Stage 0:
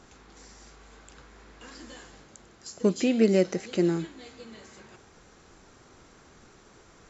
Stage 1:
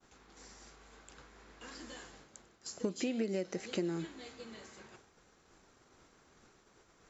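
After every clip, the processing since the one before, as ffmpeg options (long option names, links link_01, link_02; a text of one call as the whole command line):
ffmpeg -i in.wav -af "agate=range=-33dB:threshold=-48dB:ratio=3:detection=peak,lowshelf=frequency=210:gain=-4,acompressor=threshold=-28dB:ratio=16,volume=-2.5dB" out.wav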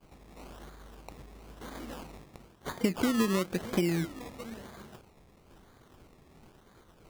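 ffmpeg -i in.wav -af "bass=frequency=250:gain=8,treble=frequency=4000:gain=4,acrusher=samples=23:mix=1:aa=0.000001:lfo=1:lforange=13.8:lforate=1,volume=4dB" out.wav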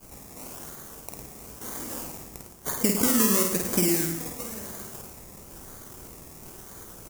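ffmpeg -i in.wav -af "areverse,acompressor=mode=upward:threshold=-42dB:ratio=2.5,areverse,aexciter=amount=5.1:drive=6.3:freq=5500,aecho=1:1:50|105|165.5|232|305.3:0.631|0.398|0.251|0.158|0.1,volume=1.5dB" out.wav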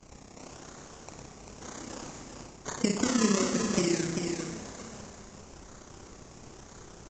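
ffmpeg -i in.wav -af "tremolo=f=32:d=0.667,aecho=1:1:393:0.531" -ar 16000 -c:a pcm_mulaw out.wav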